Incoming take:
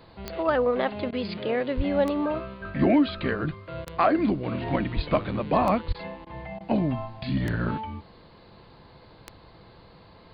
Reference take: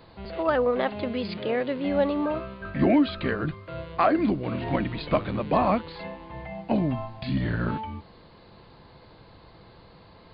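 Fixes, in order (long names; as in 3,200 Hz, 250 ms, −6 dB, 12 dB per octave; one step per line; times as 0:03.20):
click removal
0:01.76–0:01.88: high-pass filter 140 Hz 24 dB per octave
0:04.95–0:05.07: high-pass filter 140 Hz 24 dB per octave
0:05.87–0:05.99: high-pass filter 140 Hz 24 dB per octave
repair the gap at 0:01.11/0:03.85/0:05.93/0:06.25/0:06.59, 14 ms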